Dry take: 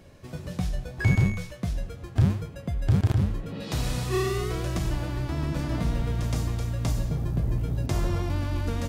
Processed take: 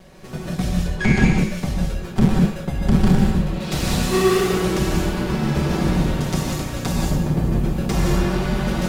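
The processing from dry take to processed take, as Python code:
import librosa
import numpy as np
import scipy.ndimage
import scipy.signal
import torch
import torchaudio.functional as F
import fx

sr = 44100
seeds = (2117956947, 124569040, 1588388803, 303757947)

y = fx.lower_of_two(x, sr, delay_ms=5.3)
y = fx.lowpass(y, sr, hz=8200.0, slope=12, at=(0.83, 1.38))
y = fx.rev_gated(y, sr, seeds[0], gate_ms=210, shape='rising', drr_db=-0.5)
y = y * 10.0 ** (7.0 / 20.0)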